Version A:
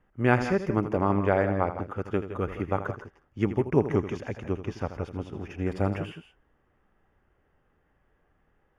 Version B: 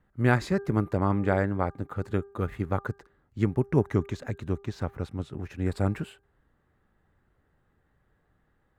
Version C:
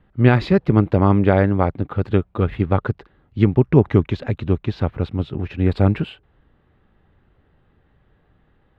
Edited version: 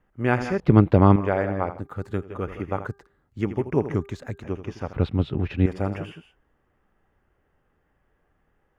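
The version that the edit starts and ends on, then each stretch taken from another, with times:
A
0.6–1.16 from C
1.77–2.26 from B, crossfade 0.10 s
2.86–3.41 from B
3.94–4.42 from B
4.93–5.66 from C

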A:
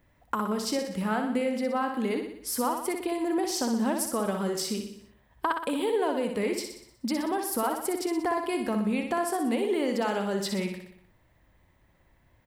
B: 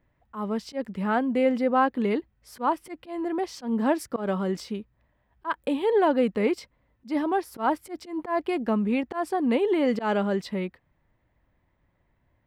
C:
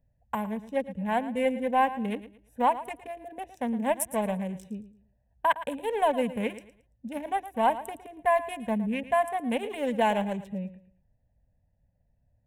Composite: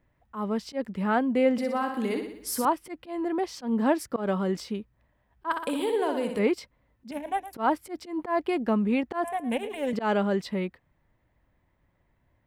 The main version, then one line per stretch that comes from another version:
B
1.58–2.65 from A
5.51–6.39 from A
7.11–7.53 from C
9.24–9.93 from C

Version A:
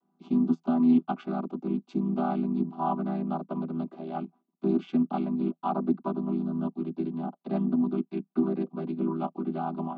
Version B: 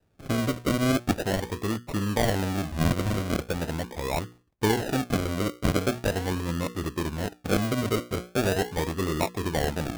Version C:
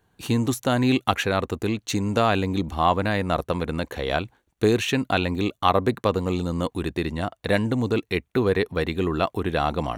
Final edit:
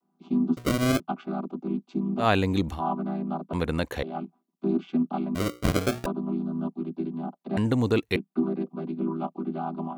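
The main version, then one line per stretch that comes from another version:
A
0.57–1 from B
2.23–2.77 from C, crossfade 0.10 s
3.53–4.03 from C
5.35–6.06 from B
7.57–8.16 from C

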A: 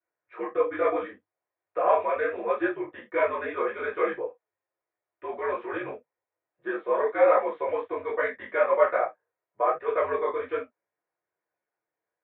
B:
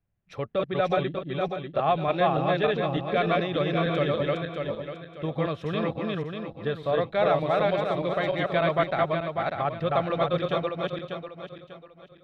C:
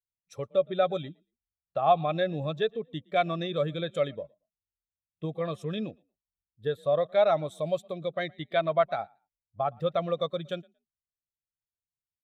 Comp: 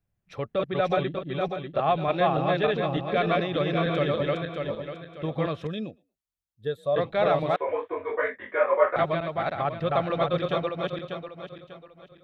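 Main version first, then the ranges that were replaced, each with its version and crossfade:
B
5.67–6.96 from C
7.56–8.96 from A

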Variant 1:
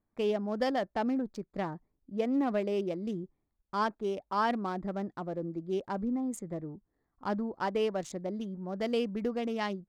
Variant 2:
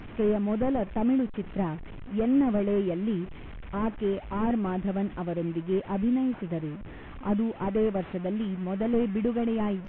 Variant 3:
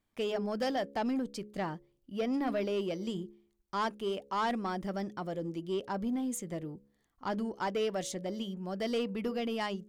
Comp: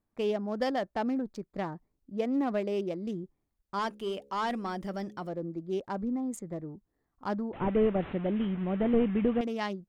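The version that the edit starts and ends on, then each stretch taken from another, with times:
1
3.79–5.29 from 3
7.53–9.41 from 2

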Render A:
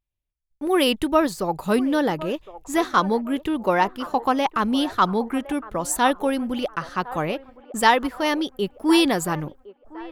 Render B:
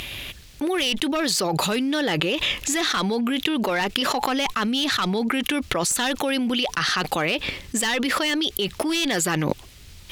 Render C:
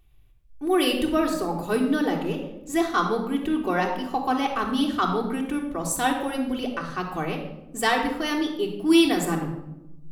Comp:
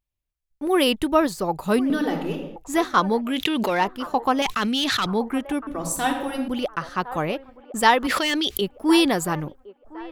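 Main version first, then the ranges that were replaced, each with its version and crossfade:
A
1.9–2.56 from C
3.3–3.77 from B, crossfade 0.24 s
4.42–5.06 from B
5.67–6.48 from C
8.07–8.61 from B

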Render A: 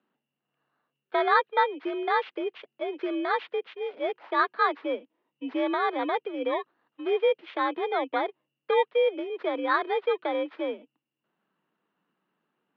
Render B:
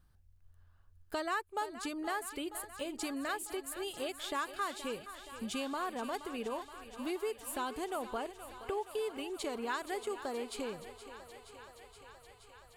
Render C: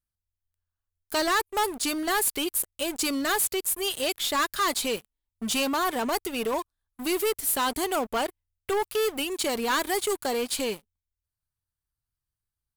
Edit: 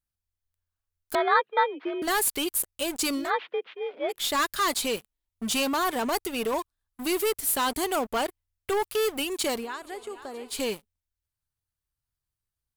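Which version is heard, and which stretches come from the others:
C
1.15–2.02 from A
3.23–4.16 from A, crossfade 0.16 s
9.6–10.54 from B, crossfade 0.16 s

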